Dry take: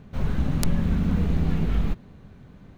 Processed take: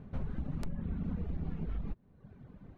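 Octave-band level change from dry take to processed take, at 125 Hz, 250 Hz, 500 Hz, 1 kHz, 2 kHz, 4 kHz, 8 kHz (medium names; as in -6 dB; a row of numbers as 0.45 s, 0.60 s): -13.5 dB, -13.5 dB, -13.5 dB, -15.0 dB, -17.5 dB, under -20 dB, under -25 dB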